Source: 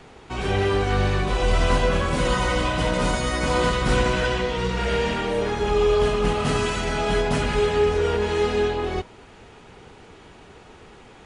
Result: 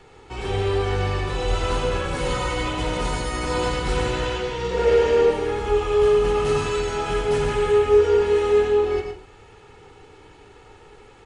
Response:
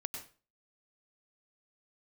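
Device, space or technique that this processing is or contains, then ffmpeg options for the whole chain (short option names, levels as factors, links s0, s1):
microphone above a desk: -filter_complex "[0:a]asettb=1/sr,asplit=3[s0][s1][s2];[s0]atrim=end=4.714[s3];[s1]atrim=start=4.71:end=5.31,asetpts=PTS-STARTPTS,afade=t=in:d=0.004:c=qsin,afade=t=out:st=0.596:d=0.004:c=qsin,equalizer=f=490:t=o:w=0.97:g=12[s4];[s2]atrim=start=5.306[s5];[s3][s4]acrossfade=d=0.004:c1=hsin:c2=qsin[s6];[s6][s5]acrossfade=d=0.004:c1=qsin:c2=hsin,aecho=1:1:2.3:0.55[s7];[1:a]atrim=start_sample=2205[s8];[s7][s8]afir=irnorm=-1:irlink=0,volume=0.75"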